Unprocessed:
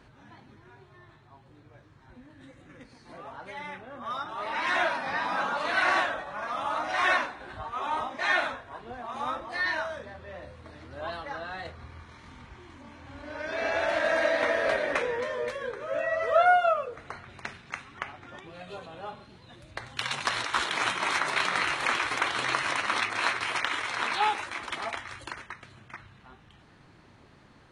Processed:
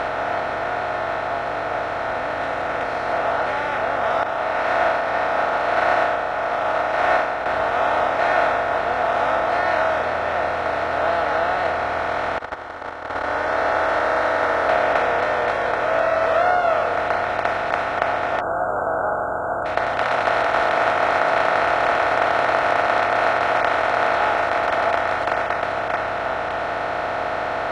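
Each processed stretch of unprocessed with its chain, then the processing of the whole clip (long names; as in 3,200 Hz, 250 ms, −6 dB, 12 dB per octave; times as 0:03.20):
0:04.23–0:07.46: parametric band 3,700 Hz −3 dB 0.34 octaves + double-tracking delay 33 ms −3.5 dB + expander for the loud parts 2.5 to 1, over −33 dBFS
0:12.38–0:14.69: noise gate −44 dBFS, range −43 dB + phaser with its sweep stopped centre 680 Hz, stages 6
0:18.40–0:19.66: linear-phase brick-wall band-stop 1,600–6,800 Hz + high-frequency loss of the air 200 metres
whole clip: compressor on every frequency bin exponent 0.2; low-pass filter 1,300 Hz 6 dB per octave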